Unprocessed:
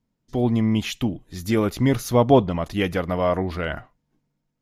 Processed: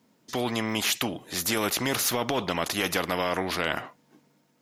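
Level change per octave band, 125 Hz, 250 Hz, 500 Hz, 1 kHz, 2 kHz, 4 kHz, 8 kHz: −13.5, −9.5, −8.0, −3.5, +3.0, +5.5, +9.0 decibels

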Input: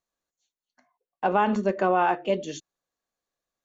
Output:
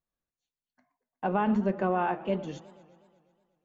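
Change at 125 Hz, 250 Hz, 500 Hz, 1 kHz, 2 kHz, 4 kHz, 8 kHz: +1.5 dB, 0.0 dB, −5.5 dB, −6.5 dB, −7.0 dB, −9.0 dB, can't be measured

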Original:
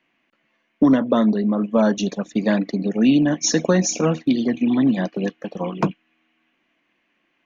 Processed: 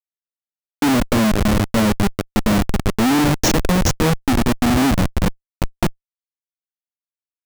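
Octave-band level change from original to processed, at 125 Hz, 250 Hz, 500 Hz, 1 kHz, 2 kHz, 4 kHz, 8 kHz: +6.5 dB, 0.0 dB, −1.0 dB, +6.5 dB, +6.5 dB, +5.5 dB, can't be measured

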